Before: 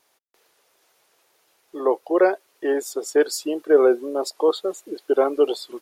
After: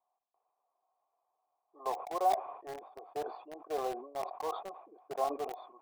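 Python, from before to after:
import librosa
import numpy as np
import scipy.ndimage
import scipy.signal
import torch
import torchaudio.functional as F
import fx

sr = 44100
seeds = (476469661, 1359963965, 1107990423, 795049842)

p1 = fx.formant_cascade(x, sr, vowel='a')
p2 = fx.quant_dither(p1, sr, seeds[0], bits=6, dither='none')
p3 = p1 + F.gain(torch.from_numpy(p2), -6.0).numpy()
p4 = fx.sustainer(p3, sr, db_per_s=86.0)
y = F.gain(torch.from_numpy(p4), -4.0).numpy()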